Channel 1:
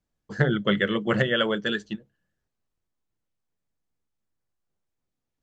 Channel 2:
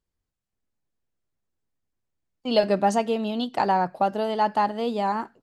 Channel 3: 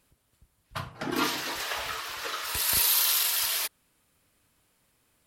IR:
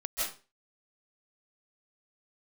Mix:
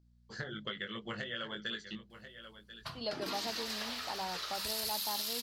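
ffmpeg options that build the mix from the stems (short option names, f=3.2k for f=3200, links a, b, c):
-filter_complex "[0:a]equalizer=f=300:w=0.42:g=-7.5,flanger=delay=17.5:depth=2.2:speed=2.9,volume=-2.5dB,asplit=2[a][b];[b]volume=-20.5dB[c];[1:a]adelay=500,volume=-19dB[d];[2:a]adelay=2100,volume=-10dB[e];[a][e]amix=inputs=2:normalize=0,aeval=exprs='val(0)+0.000631*(sin(2*PI*60*n/s)+sin(2*PI*2*60*n/s)/2+sin(2*PI*3*60*n/s)/3+sin(2*PI*4*60*n/s)/4+sin(2*PI*5*60*n/s)/5)':c=same,acompressor=threshold=-38dB:ratio=6,volume=0dB[f];[c]aecho=0:1:1037:1[g];[d][f][g]amix=inputs=3:normalize=0,equalizer=f=4.5k:t=o:w=0.73:g=10.5,bandreject=f=50:t=h:w=6,bandreject=f=100:t=h:w=6,bandreject=f=150:t=h:w=6,bandreject=f=200:t=h:w=6,bandreject=f=250:t=h:w=6,bandreject=f=300:t=h:w=6"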